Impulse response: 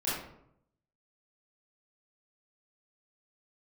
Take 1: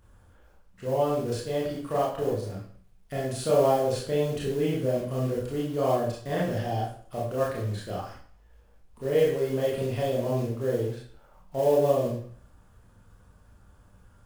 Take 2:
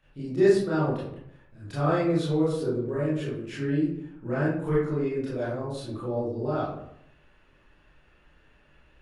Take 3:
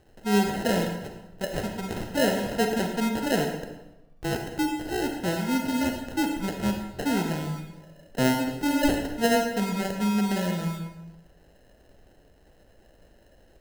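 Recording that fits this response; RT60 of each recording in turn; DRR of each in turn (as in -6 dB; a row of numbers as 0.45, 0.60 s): 2; 0.55, 0.75, 1.0 s; -5.5, -10.5, 3.5 dB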